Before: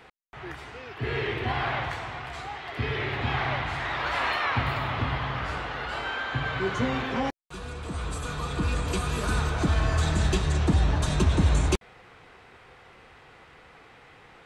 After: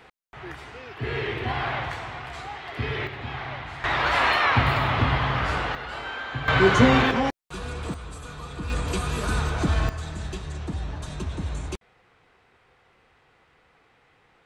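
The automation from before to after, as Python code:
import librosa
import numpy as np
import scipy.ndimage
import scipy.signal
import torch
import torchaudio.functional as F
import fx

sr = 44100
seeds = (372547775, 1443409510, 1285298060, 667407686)

y = fx.gain(x, sr, db=fx.steps((0.0, 0.5), (3.07, -6.0), (3.84, 6.0), (5.75, -2.0), (6.48, 10.5), (7.11, 4.0), (7.94, -6.0), (8.7, 1.0), (9.89, -9.0)))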